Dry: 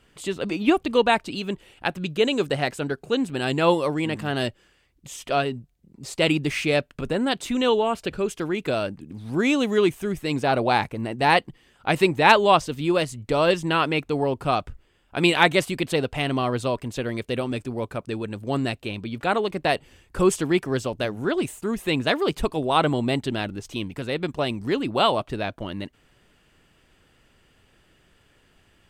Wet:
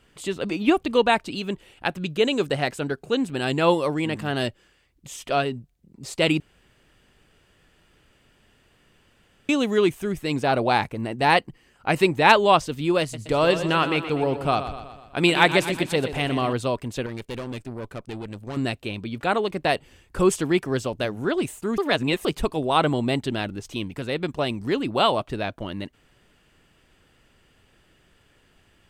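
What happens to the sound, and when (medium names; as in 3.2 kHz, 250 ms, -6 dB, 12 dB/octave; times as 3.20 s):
6.40–9.49 s: room tone
11.39–11.99 s: band-stop 3.5 kHz, Q 5.3
13.01–16.53 s: feedback delay 123 ms, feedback 55%, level -11 dB
17.06–18.57 s: valve stage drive 28 dB, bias 0.75
21.78–22.25 s: reverse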